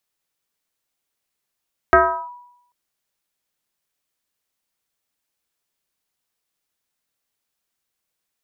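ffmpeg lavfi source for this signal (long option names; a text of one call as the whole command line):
ffmpeg -f lavfi -i "aevalsrc='0.501*pow(10,-3*t/0.79)*sin(2*PI*976*t+2.2*clip(1-t/0.37,0,1)*sin(2*PI*0.31*976*t))':duration=0.79:sample_rate=44100" out.wav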